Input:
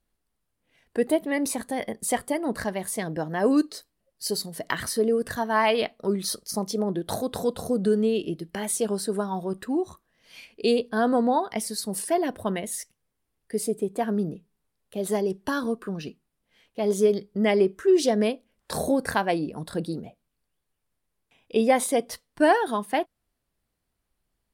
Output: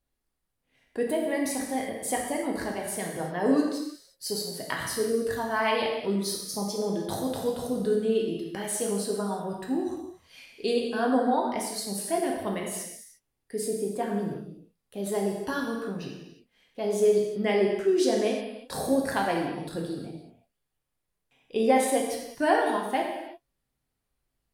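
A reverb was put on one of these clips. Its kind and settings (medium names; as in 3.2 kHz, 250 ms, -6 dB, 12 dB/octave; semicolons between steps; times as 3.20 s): gated-style reverb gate 380 ms falling, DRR -1 dB; trim -5.5 dB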